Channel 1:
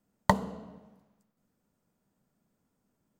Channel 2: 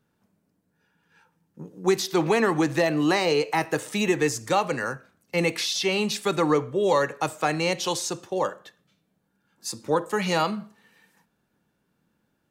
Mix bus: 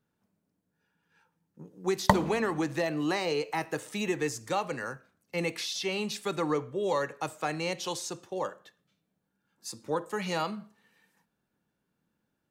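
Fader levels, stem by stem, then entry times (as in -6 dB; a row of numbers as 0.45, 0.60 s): +2.0, -7.5 dB; 1.80, 0.00 s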